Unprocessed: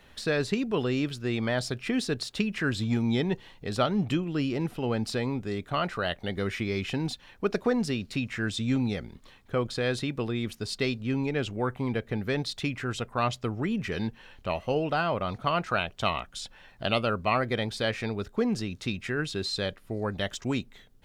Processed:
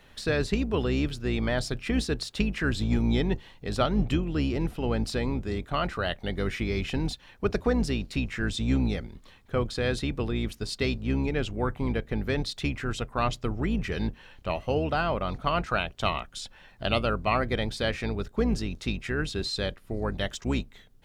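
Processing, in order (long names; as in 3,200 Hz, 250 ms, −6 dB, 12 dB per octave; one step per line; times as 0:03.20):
sub-octave generator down 2 octaves, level −1 dB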